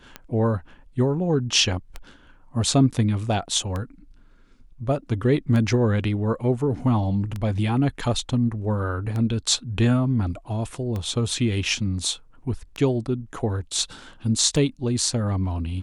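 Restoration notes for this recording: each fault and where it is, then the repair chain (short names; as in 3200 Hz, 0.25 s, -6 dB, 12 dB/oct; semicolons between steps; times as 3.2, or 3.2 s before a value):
tick 33 1/3 rpm -17 dBFS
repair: de-click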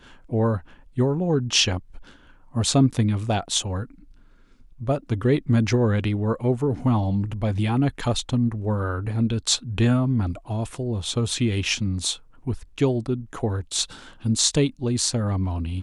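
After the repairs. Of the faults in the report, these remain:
none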